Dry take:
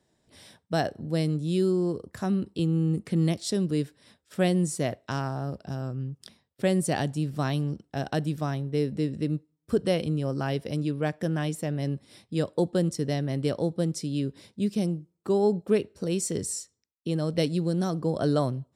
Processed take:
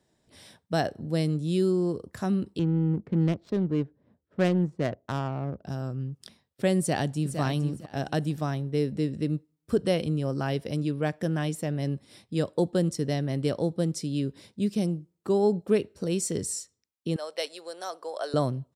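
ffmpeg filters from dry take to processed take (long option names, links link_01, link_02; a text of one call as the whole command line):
ffmpeg -i in.wav -filter_complex "[0:a]asettb=1/sr,asplit=3[link_01][link_02][link_03];[link_01]atrim=end=2.594[link_04];[link_02]atrim=start=2.59:end=5.65,asetpts=PTS-STARTPTS,afade=type=in:duration=0.004:curve=qsin,afade=type=out:start_time=3.056:duration=0.004:curve=qsin,adynamicsmooth=sensitivity=2.5:basefreq=600[link_05];[link_03]atrim=start=5.646[link_06];[link_04][link_05]acrossfade=duration=0.004:curve1=hsin:curve2=qsin[link_07];[link_07][link_06]acrossfade=duration=0.004:curve1=qsin:curve2=hsin,asplit=2[link_08][link_09];[link_09]afade=type=in:start_time=6.79:duration=0.01,afade=type=out:start_time=7.39:duration=0.01,aecho=0:1:460|920|1380:0.375837|0.0751675|0.0150335[link_10];[link_08][link_10]amix=inputs=2:normalize=0,asettb=1/sr,asplit=3[link_11][link_12][link_13];[link_11]atrim=end=17.164[link_14];[link_12]atrim=start=17.16:end=18.34,asetpts=PTS-STARTPTS,afade=type=in:duration=0.004:curve=qsin,afade=type=out:start_time=1.176:duration=0.004:curve=qsin,highpass=frequency=570:width=0.5412,highpass=frequency=570:width=1.3066[link_15];[link_13]atrim=start=18.336[link_16];[link_14][link_15]acrossfade=duration=0.004:curve1=hsin:curve2=qsin[link_17];[link_17][link_16]acrossfade=duration=0.004:curve1=qsin:curve2=hsin" out.wav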